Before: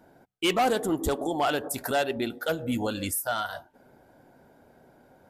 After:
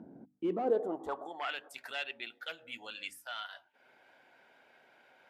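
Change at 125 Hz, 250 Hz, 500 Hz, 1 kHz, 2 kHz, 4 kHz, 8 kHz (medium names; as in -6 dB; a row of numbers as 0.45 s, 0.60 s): -19.0 dB, -12.0 dB, -8.0 dB, -12.0 dB, -8.5 dB, -9.5 dB, -23.0 dB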